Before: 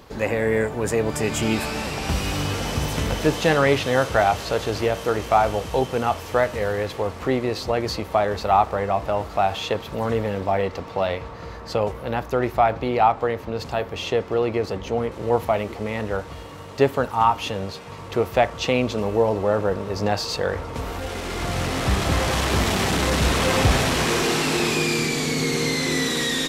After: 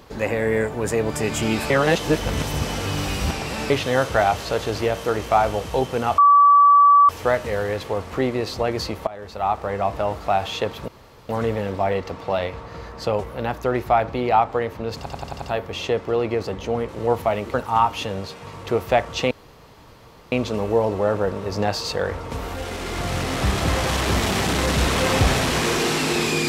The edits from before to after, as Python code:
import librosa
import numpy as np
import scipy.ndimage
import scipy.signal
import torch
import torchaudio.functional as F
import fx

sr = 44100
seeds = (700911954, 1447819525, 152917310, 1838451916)

y = fx.edit(x, sr, fx.reverse_span(start_s=1.7, length_s=2.0),
    fx.insert_tone(at_s=6.18, length_s=0.91, hz=1150.0, db=-9.0),
    fx.fade_in_from(start_s=8.16, length_s=0.79, floor_db=-20.0),
    fx.insert_room_tone(at_s=9.97, length_s=0.41),
    fx.stutter(start_s=13.65, slice_s=0.09, count=6),
    fx.cut(start_s=15.77, length_s=1.22),
    fx.insert_room_tone(at_s=18.76, length_s=1.01), tone=tone)